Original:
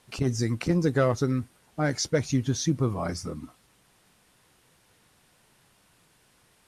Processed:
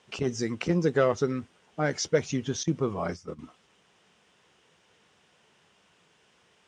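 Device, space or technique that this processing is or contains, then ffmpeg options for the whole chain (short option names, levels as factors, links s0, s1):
car door speaker: -filter_complex "[0:a]highpass=100,equalizer=f=120:t=q:w=4:g=-10,equalizer=f=280:t=q:w=4:g=-5,equalizer=f=430:t=q:w=4:g=4,equalizer=f=3000:t=q:w=4:g=5,equalizer=f=4300:t=q:w=4:g=-6,lowpass=f=7000:w=0.5412,lowpass=f=7000:w=1.3066,asettb=1/sr,asplit=3[s0][s1][s2];[s0]atrim=end=2.634[s3];[s1]atrim=start=2.63:end=3.39,asetpts=PTS-STARTPTS,afade=t=in:d=0.004:c=qsin,afade=t=out:st=0.756:d=0.004:c=qsin,agate=range=0.251:threshold=0.0224:ratio=16:detection=peak[s4];[s2]atrim=start=3.386[s5];[s3][s4]acrossfade=d=0.004:c1=hsin:c2=qsin[s6];[s6][s5]acrossfade=d=0.004:c1=qsin:c2=hsin"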